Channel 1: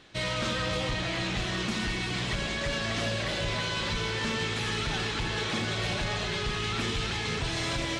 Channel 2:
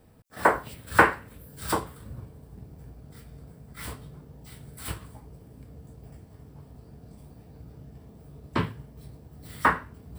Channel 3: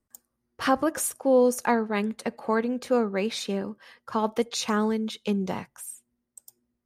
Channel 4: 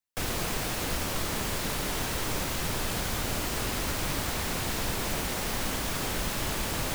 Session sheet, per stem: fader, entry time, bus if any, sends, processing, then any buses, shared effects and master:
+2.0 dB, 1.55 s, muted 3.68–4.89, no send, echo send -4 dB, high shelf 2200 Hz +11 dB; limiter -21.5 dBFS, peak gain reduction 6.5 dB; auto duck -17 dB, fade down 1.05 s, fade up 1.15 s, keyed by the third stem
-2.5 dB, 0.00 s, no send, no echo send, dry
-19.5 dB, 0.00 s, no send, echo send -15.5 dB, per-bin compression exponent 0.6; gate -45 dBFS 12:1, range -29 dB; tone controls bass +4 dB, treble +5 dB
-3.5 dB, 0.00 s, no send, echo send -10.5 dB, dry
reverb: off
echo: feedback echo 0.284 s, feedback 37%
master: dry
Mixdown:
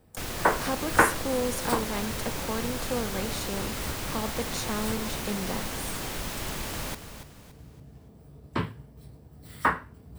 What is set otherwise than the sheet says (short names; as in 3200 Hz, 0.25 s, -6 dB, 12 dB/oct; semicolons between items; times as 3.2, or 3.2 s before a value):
stem 1: muted; stem 3 -19.5 dB -> -11.0 dB